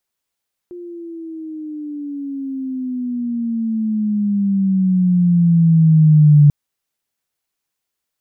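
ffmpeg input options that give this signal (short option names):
-f lavfi -i "aevalsrc='pow(10,(-5+24.5*(t/5.79-1))/20)*sin(2*PI*355*5.79/(-15.5*log(2)/12)*(exp(-15.5*log(2)/12*t/5.79)-1))':d=5.79:s=44100"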